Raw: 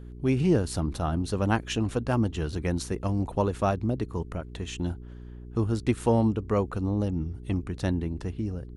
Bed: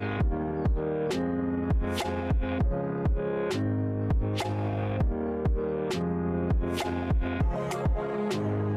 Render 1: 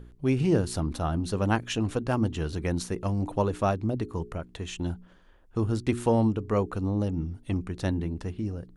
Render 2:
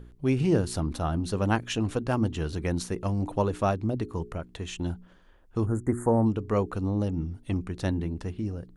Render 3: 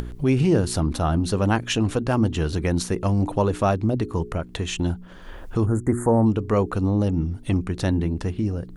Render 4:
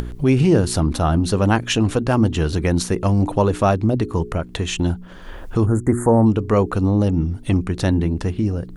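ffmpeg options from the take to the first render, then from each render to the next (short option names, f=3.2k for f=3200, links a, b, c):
-af "bandreject=f=60:t=h:w=4,bandreject=f=120:t=h:w=4,bandreject=f=180:t=h:w=4,bandreject=f=240:t=h:w=4,bandreject=f=300:t=h:w=4,bandreject=f=360:t=h:w=4,bandreject=f=420:t=h:w=4"
-filter_complex "[0:a]asplit=3[a][b][c];[a]afade=t=out:st=5.65:d=0.02[d];[b]asuperstop=centerf=3700:order=12:qfactor=0.74,afade=t=in:st=5.65:d=0.02,afade=t=out:st=6.25:d=0.02[e];[c]afade=t=in:st=6.25:d=0.02[f];[d][e][f]amix=inputs=3:normalize=0"
-filter_complex "[0:a]asplit=2[a][b];[b]alimiter=limit=-20.5dB:level=0:latency=1,volume=2dB[c];[a][c]amix=inputs=2:normalize=0,acompressor=mode=upward:threshold=-22dB:ratio=2.5"
-af "volume=4dB"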